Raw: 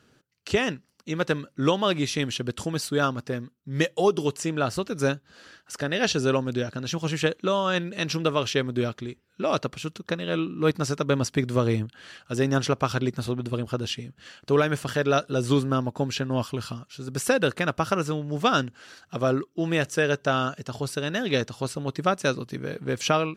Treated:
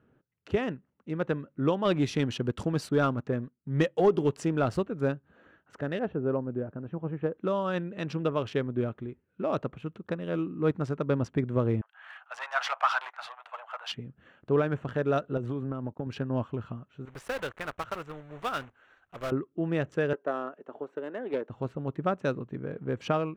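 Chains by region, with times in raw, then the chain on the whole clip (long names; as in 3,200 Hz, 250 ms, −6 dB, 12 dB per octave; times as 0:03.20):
0:01.85–0:04.83: leveller curve on the samples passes 1 + high-shelf EQ 4,800 Hz +6.5 dB
0:05.99–0:07.38: Bessel low-pass filter 1,000 Hz + low-shelf EQ 190 Hz −4.5 dB
0:11.81–0:13.92: mid-hump overdrive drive 24 dB, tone 2,500 Hz, clips at −8.5 dBFS + Butterworth high-pass 710 Hz 48 dB per octave + multiband upward and downward expander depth 70%
0:15.37–0:16.07: noise gate −39 dBFS, range −25 dB + high-pass filter 57 Hz + downward compressor 12 to 1, threshold −24 dBFS
0:17.05–0:19.32: one scale factor per block 3 bits + parametric band 200 Hz −15 dB 2.9 octaves
0:20.13–0:21.50: high-pass filter 310 Hz 24 dB per octave + high-shelf EQ 2,300 Hz −12 dB + highs frequency-modulated by the lows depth 0.13 ms
whole clip: adaptive Wiener filter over 9 samples; low-pass filter 1,100 Hz 6 dB per octave; level −3 dB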